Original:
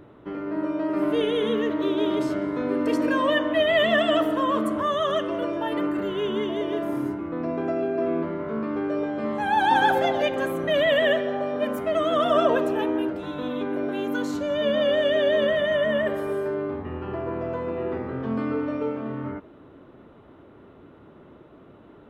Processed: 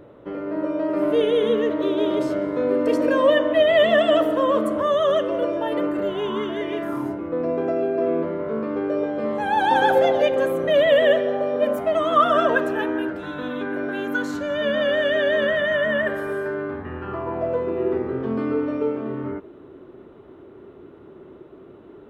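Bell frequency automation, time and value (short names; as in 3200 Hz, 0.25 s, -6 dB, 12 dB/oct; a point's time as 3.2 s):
bell +10.5 dB 0.45 oct
6.01 s 530 Hz
6.76 s 2500 Hz
7.18 s 500 Hz
11.6 s 500 Hz
12.39 s 1600 Hz
17.03 s 1600 Hz
17.68 s 380 Hz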